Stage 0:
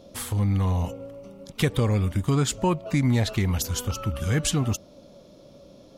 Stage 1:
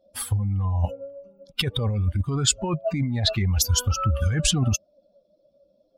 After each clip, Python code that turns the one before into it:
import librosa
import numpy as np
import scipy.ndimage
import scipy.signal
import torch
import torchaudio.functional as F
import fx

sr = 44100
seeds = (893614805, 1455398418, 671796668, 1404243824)

y = fx.bin_expand(x, sr, power=2.0)
y = fx.high_shelf(y, sr, hz=11000.0, db=-12.0)
y = fx.over_compress(y, sr, threshold_db=-31.0, ratio=-1.0)
y = y * 10.0 ** (9.0 / 20.0)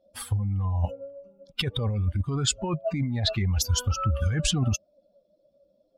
y = fx.high_shelf(x, sr, hz=9200.0, db=-9.0)
y = y * 10.0 ** (-2.5 / 20.0)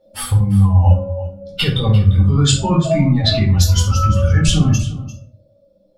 y = fx.rider(x, sr, range_db=10, speed_s=0.5)
y = y + 10.0 ** (-16.0 / 20.0) * np.pad(y, (int(346 * sr / 1000.0), 0))[:len(y)]
y = fx.room_shoebox(y, sr, seeds[0], volume_m3=360.0, walls='furnished', distance_m=4.3)
y = y * 10.0 ** (3.0 / 20.0)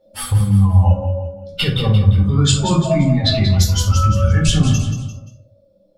y = x + 10.0 ** (-9.5 / 20.0) * np.pad(x, (int(182 * sr / 1000.0), 0))[:len(x)]
y = y * 10.0 ** (-1.0 / 20.0)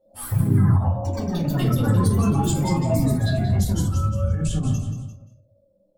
y = fx.band_shelf(x, sr, hz=2900.0, db=-10.5, octaves=2.3)
y = fx.echo_pitch(y, sr, ms=84, semitones=4, count=3, db_per_echo=-3.0)
y = fx.end_taper(y, sr, db_per_s=120.0)
y = y * 10.0 ** (-7.0 / 20.0)